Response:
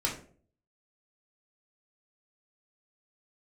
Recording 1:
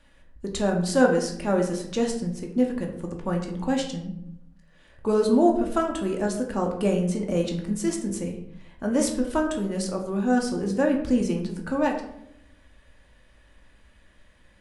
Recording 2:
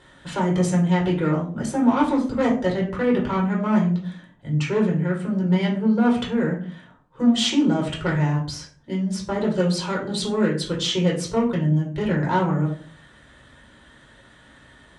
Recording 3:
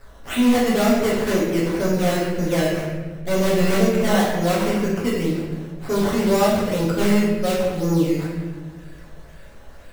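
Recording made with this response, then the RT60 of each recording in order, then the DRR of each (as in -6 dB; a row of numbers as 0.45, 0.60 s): 2; 0.80, 0.45, 1.3 s; 1.0, -3.5, -6.5 dB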